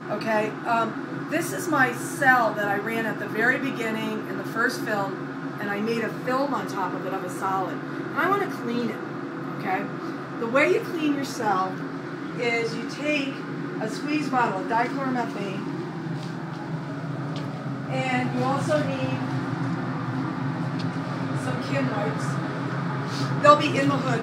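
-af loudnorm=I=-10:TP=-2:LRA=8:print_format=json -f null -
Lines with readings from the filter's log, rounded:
"input_i" : "-25.5",
"input_tp" : "-1.7",
"input_lra" : "4.5",
"input_thresh" : "-35.5",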